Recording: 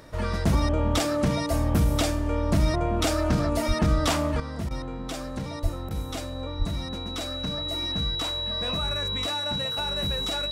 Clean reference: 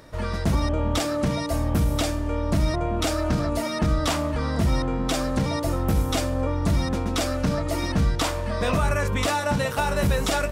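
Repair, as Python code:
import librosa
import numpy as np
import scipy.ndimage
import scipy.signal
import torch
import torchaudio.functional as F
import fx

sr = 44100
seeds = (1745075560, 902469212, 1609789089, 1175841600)

y = fx.notch(x, sr, hz=3900.0, q=30.0)
y = fx.highpass(y, sr, hz=140.0, slope=24, at=(3.67, 3.79), fade=0.02)
y = fx.highpass(y, sr, hz=140.0, slope=24, at=(5.62, 5.74), fade=0.02)
y = fx.highpass(y, sr, hz=140.0, slope=24, at=(6.58, 6.7), fade=0.02)
y = fx.fix_interpolate(y, sr, at_s=(4.69, 5.89), length_ms=16.0)
y = fx.gain(y, sr, db=fx.steps((0.0, 0.0), (4.4, 9.0)))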